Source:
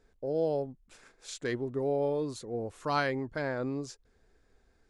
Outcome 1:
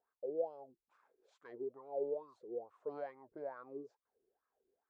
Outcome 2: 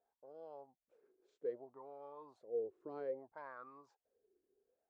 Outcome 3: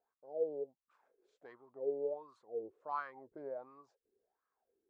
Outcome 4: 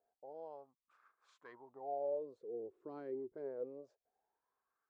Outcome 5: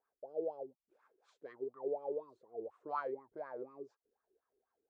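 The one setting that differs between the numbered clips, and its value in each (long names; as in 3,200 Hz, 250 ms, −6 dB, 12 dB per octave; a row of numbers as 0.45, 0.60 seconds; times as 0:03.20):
LFO wah, speed: 2.3, 0.62, 1.4, 0.25, 4.1 Hertz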